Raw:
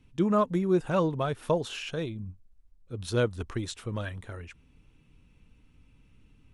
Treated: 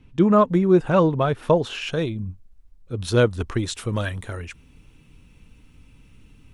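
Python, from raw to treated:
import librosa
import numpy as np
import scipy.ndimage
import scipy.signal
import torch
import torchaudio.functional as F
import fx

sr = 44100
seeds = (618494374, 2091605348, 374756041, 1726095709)

y = fx.high_shelf(x, sr, hz=5400.0, db=fx.steps((0.0, -12.0), (1.81, -2.5), (3.71, 6.5)))
y = y * librosa.db_to_amplitude(8.5)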